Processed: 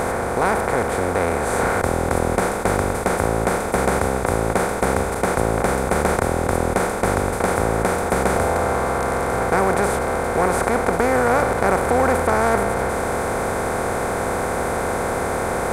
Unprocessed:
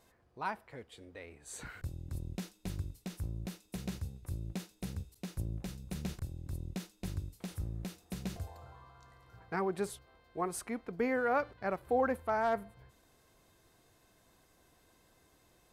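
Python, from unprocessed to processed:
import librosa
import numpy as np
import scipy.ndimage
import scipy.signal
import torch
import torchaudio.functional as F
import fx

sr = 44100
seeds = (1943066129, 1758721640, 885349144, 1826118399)

y = fx.bin_compress(x, sr, power=0.2)
y = F.gain(torch.from_numpy(y), 7.0).numpy()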